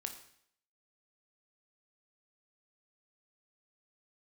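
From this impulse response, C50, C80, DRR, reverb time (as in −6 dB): 9.0 dB, 12.0 dB, 5.0 dB, 0.65 s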